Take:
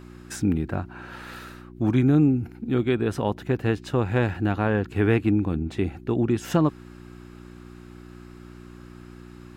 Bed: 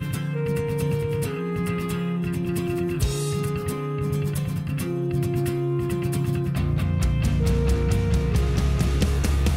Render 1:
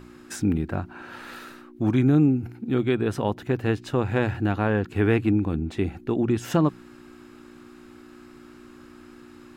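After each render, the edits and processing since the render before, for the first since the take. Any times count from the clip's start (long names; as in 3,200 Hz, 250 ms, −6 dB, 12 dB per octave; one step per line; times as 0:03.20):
hum removal 60 Hz, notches 3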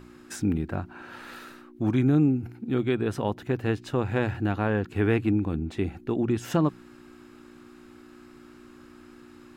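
level −2.5 dB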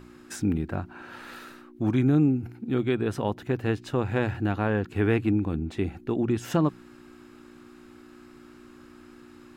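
no processing that can be heard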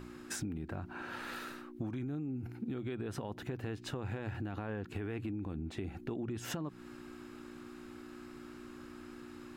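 brickwall limiter −23 dBFS, peak gain reduction 10.5 dB
downward compressor 6 to 1, threshold −36 dBFS, peak gain reduction 9.5 dB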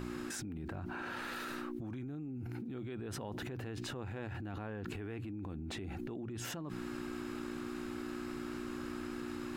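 brickwall limiter −37.5 dBFS, peak gain reduction 10.5 dB
envelope flattener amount 100%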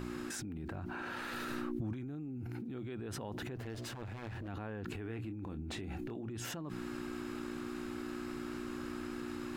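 0:01.33–0:01.93: low-shelf EQ 240 Hz +8.5 dB
0:03.56–0:04.48: lower of the sound and its delayed copy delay 8.9 ms
0:05.02–0:06.31: double-tracking delay 27 ms −9.5 dB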